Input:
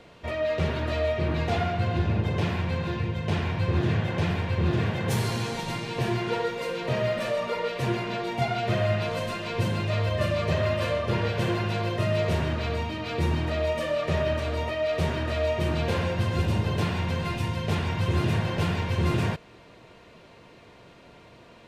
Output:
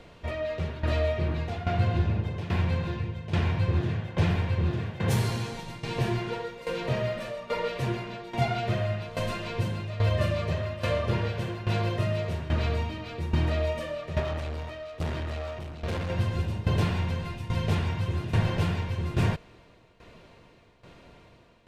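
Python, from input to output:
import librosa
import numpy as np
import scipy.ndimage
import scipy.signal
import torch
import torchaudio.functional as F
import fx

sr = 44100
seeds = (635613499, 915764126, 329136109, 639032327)

y = fx.low_shelf(x, sr, hz=69.0, db=12.0)
y = fx.tube_stage(y, sr, drive_db=26.0, bias=0.45, at=(14.2, 16.1))
y = fx.tremolo_shape(y, sr, shape='saw_down', hz=1.2, depth_pct=80)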